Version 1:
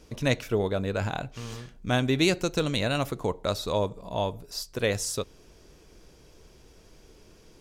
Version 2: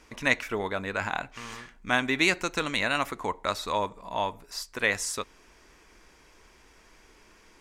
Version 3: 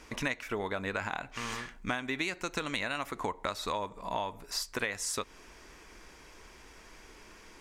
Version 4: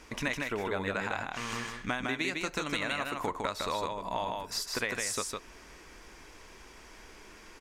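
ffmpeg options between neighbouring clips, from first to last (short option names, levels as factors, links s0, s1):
-af "equalizer=f=125:t=o:w=1:g=-9,equalizer=f=250:t=o:w=1:g=3,equalizer=f=500:t=o:w=1:g=-3,equalizer=f=1000:t=o:w=1:g=9,equalizer=f=2000:t=o:w=1:g=12,equalizer=f=8000:t=o:w=1:g=5,volume=0.562"
-af "acompressor=threshold=0.0224:ratio=16,volume=1.5"
-af "aecho=1:1:156:0.668"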